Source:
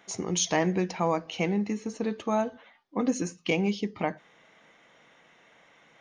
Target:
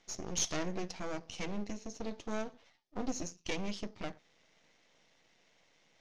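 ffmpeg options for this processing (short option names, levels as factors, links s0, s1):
-af "equalizer=f=1300:t=o:w=0.71:g=-12,aeval=exprs='max(val(0),0)':c=same,lowpass=f=6000:t=q:w=2.1,volume=0.562"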